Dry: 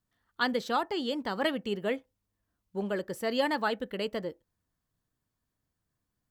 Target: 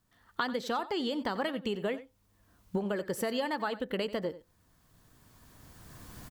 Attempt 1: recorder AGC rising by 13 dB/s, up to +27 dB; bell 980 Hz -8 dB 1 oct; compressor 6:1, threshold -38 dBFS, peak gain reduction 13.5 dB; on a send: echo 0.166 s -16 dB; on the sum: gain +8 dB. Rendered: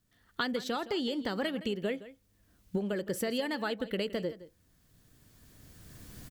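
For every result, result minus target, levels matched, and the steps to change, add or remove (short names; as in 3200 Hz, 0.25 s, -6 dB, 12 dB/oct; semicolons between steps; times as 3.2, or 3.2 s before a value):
echo 76 ms late; 1000 Hz band -4.0 dB
change: echo 90 ms -16 dB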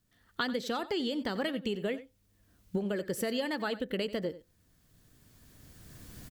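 1000 Hz band -4.0 dB
change: bell 980 Hz +2 dB 1 oct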